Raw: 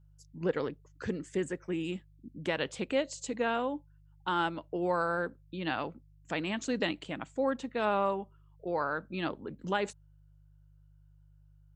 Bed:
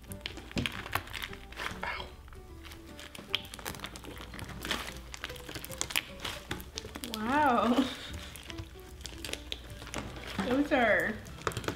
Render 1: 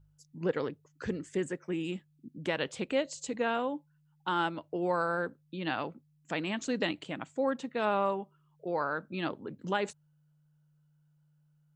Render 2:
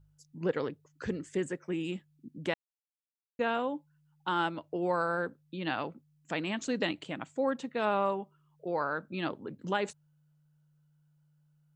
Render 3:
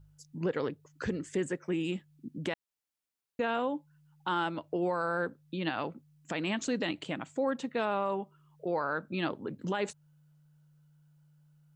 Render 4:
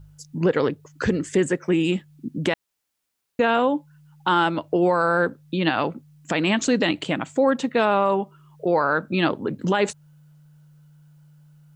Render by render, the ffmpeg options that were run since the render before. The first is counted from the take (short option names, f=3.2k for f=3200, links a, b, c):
-af "bandreject=f=50:t=h:w=4,bandreject=f=100:t=h:w=4"
-filter_complex "[0:a]asplit=3[a][b][c];[a]atrim=end=2.54,asetpts=PTS-STARTPTS,afade=t=out:st=2.536:d=0.004:c=hsin[d];[b]atrim=start=2.54:end=3.39,asetpts=PTS-STARTPTS,volume=0[e];[c]atrim=start=3.39,asetpts=PTS-STARTPTS,afade=t=in:d=0.004:c=hsin[f];[d][e][f]concat=n=3:v=0:a=1"
-filter_complex "[0:a]asplit=2[a][b];[b]acompressor=threshold=-41dB:ratio=6,volume=-2dB[c];[a][c]amix=inputs=2:normalize=0,alimiter=limit=-21.5dB:level=0:latency=1:release=45"
-af "volume=11.5dB"